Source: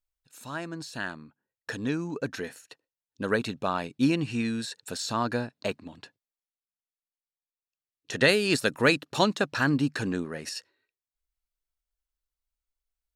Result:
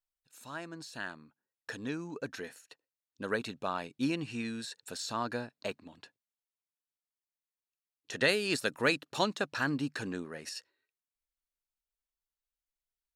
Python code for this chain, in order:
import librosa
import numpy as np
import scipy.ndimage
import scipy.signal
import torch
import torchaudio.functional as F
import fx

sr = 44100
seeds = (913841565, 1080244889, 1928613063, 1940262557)

y = fx.low_shelf(x, sr, hz=240.0, db=-6.0)
y = F.gain(torch.from_numpy(y), -5.5).numpy()